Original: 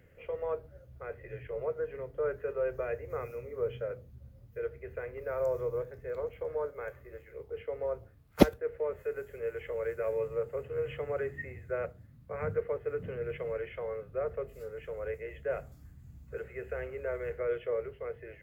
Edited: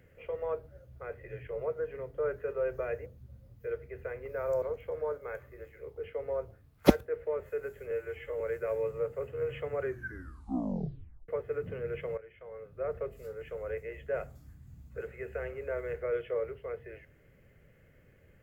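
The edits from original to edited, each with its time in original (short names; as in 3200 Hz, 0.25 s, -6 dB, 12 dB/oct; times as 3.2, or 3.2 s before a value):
3.06–3.98 cut
5.54–6.15 cut
9.44–9.77 stretch 1.5×
11.18 tape stop 1.47 s
13.54–14.28 fade in quadratic, from -14.5 dB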